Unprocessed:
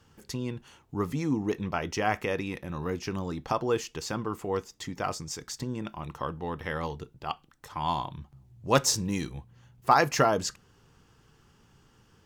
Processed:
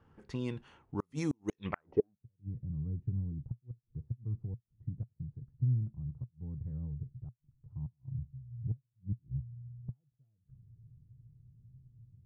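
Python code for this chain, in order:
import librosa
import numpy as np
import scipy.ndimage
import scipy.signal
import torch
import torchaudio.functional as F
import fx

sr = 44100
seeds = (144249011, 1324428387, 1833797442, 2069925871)

y = fx.env_lowpass(x, sr, base_hz=1500.0, full_db=-23.0)
y = fx.gate_flip(y, sr, shuts_db=-19.0, range_db=-41)
y = fx.filter_sweep_lowpass(y, sr, from_hz=9900.0, to_hz=120.0, start_s=1.46, end_s=2.22, q=4.8)
y = y * 10.0 ** (-3.0 / 20.0)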